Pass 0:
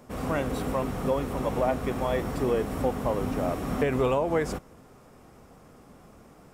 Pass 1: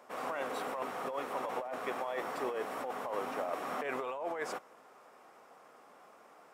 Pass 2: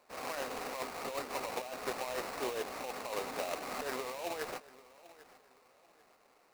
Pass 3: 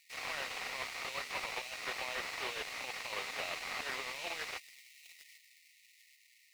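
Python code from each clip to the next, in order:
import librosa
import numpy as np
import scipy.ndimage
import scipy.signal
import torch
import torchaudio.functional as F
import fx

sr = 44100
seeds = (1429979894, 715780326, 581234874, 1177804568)

y1 = scipy.signal.sosfilt(scipy.signal.butter(2, 730.0, 'highpass', fs=sr, output='sos'), x)
y1 = fx.high_shelf(y1, sr, hz=3000.0, db=-11.0)
y1 = fx.over_compress(y1, sr, threshold_db=-36.0, ratio=-1.0)
y2 = fx.echo_feedback(y1, sr, ms=790, feedback_pct=38, wet_db=-13.0)
y2 = fx.sample_hold(y2, sr, seeds[0], rate_hz=3300.0, jitter_pct=20)
y2 = fx.upward_expand(y2, sr, threshold_db=-52.0, expansion=1.5)
y3 = fx.brickwall_highpass(y2, sr, low_hz=1800.0)
y3 = fx.slew_limit(y3, sr, full_power_hz=19.0)
y3 = y3 * 10.0 ** (8.0 / 20.0)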